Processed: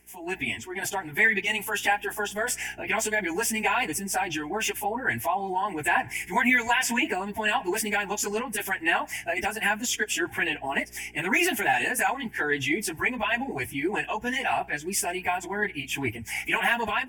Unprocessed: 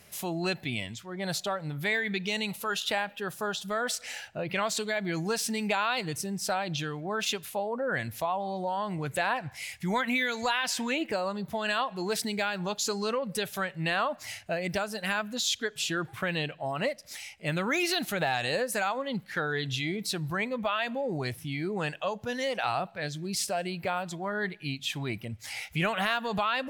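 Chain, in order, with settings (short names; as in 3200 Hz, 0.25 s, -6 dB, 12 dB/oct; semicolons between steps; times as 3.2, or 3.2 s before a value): bell 450 Hz -5 dB 1.5 oct; fixed phaser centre 830 Hz, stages 8; buzz 60 Hz, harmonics 7, -64 dBFS -3 dB/oct; AGC gain up to 14.5 dB; plain phase-vocoder stretch 0.64×; gain -1.5 dB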